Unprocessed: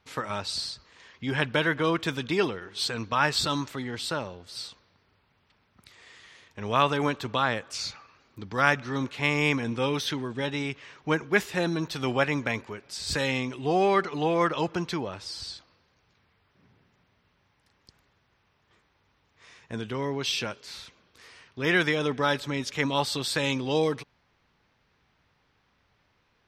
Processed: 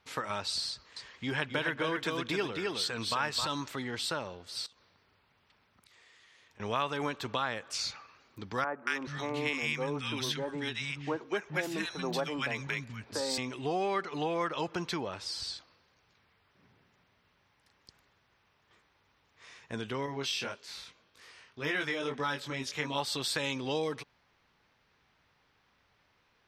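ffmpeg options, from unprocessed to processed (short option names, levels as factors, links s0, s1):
-filter_complex "[0:a]asettb=1/sr,asplit=3[s0][s1][s2];[s0]atrim=end=0.704[s3];[s1]atrim=start=0.7:end=3.47,asetpts=PTS-STARTPTS,afade=t=in:d=0.004:c=qsin,afade=t=out:st=2.766:d=0.004:c=qsin,aecho=1:1:263:0.562,atrim=end_sample=122157[s4];[s2]atrim=start=3.466[s5];[s3][s4]acrossfade=d=0.004:c1=hsin:c2=qsin[s6];[s6][s5]acrossfade=d=0.004:c1=qsin:c2=hsin,asettb=1/sr,asplit=3[s7][s8][s9];[s7]atrim=end=4.664[s10];[s8]atrim=start=4.66:end=6.6,asetpts=PTS-STARTPTS,afade=t=in:d=0.004:c=qsin,afade=t=out:st=1.936:d=0.004:c=qsin,acompressor=threshold=0.00126:ratio=5:attack=3.2:release=140:knee=1:detection=peak[s11];[s9]atrim=start=6.596[s12];[s10][s11]acrossfade=d=0.004:c1=hsin:c2=qsin[s13];[s13][s12]acrossfade=d=0.004:c1=qsin:c2=hsin,asettb=1/sr,asplit=3[s14][s15][s16];[s14]atrim=end=8.644[s17];[s15]atrim=start=8.64:end=13.38,asetpts=PTS-STARTPTS,afade=t=in:d=0.004:c=qsin,afade=t=out:st=4.736:d=0.004:c=qsin,acrossover=split=210|1300[s18][s19][s20];[s20]adelay=230[s21];[s18]adelay=430[s22];[s22][s19][s21]amix=inputs=3:normalize=0,atrim=end_sample=209034[s23];[s16]atrim=start=13.376[s24];[s17][s23]acrossfade=d=0.004:c1=hsin:c2=qsin[s25];[s25][s24]acrossfade=d=0.004:c1=qsin:c2=hsin,asettb=1/sr,asplit=3[s26][s27][s28];[s26]atrim=end=20.064[s29];[s27]atrim=start=20.06:end=22.98,asetpts=PTS-STARTPTS,afade=t=in:d=0.004:c=qsin,afade=t=out:st=2.916:d=0.004:c=qsin,flanger=delay=20:depth=3:speed=1.8[s30];[s28]atrim=start=22.976[s31];[s29][s30]acrossfade=d=0.004:c1=hsin:c2=qsin[s32];[s32][s31]acrossfade=d=0.004:c1=qsin:c2=hsin,lowshelf=f=340:g=-5.5,acompressor=threshold=0.0282:ratio=2.5"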